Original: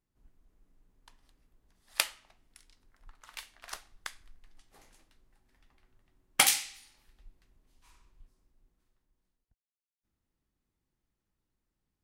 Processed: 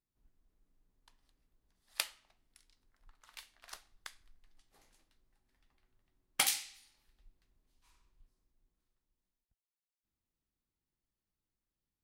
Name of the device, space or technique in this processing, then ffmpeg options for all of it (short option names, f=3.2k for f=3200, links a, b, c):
presence and air boost: -af "equalizer=f=4.2k:t=o:w=0.77:g=3,highshelf=f=12k:g=4,volume=-8.5dB"